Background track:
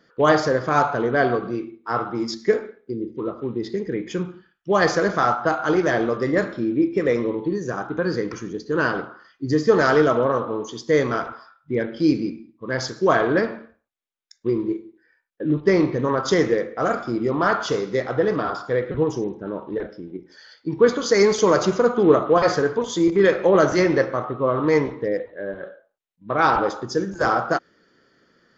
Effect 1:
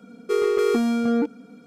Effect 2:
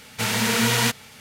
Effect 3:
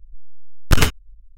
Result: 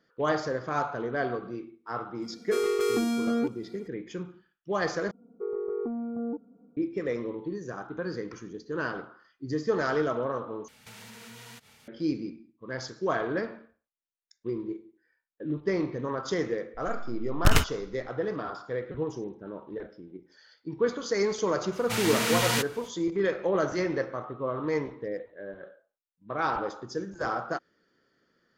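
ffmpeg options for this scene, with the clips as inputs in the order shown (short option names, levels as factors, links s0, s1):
-filter_complex "[1:a]asplit=2[s0][s1];[2:a]asplit=2[s2][s3];[0:a]volume=0.299[s4];[s0]highshelf=f=3500:g=9[s5];[s1]lowpass=f=1000:w=0.5412,lowpass=f=1000:w=1.3066[s6];[s2]acompressor=threshold=0.0224:ratio=6:attack=3.2:release=140:knee=1:detection=peak[s7];[s4]asplit=3[s8][s9][s10];[s8]atrim=end=5.114[s11];[s6]atrim=end=1.66,asetpts=PTS-STARTPTS,volume=0.266[s12];[s9]atrim=start=6.766:end=10.684[s13];[s7]atrim=end=1.2,asetpts=PTS-STARTPTS,volume=0.251[s14];[s10]atrim=start=11.876[s15];[s5]atrim=end=1.66,asetpts=PTS-STARTPTS,volume=0.501,afade=t=in:d=0.004:c=hsin,afade=t=out:st=1.656:d=0.004:c=hsin,adelay=2220[s16];[3:a]atrim=end=1.37,asetpts=PTS-STARTPTS,volume=0.473,afade=t=in:d=0.004:c=hsin,afade=t=out:st=1.366:d=0.004:c=hsin,adelay=16740[s17];[s3]atrim=end=1.2,asetpts=PTS-STARTPTS,volume=0.501,afade=t=in:d=0.05,afade=t=out:st=1.15:d=0.05,adelay=21710[s18];[s11][s12]acrossfade=d=0.004:c1=hsin:c2=hsin[s19];[s19][s13]acrossfade=d=0.004:c1=hsin:c2=hsin[s20];[s20][s14]acrossfade=d=0.004:c1=hsin:c2=hsin[s21];[s21][s15]acrossfade=d=0.004:c1=hsin:c2=hsin[s22];[s22][s16][s17][s18]amix=inputs=4:normalize=0"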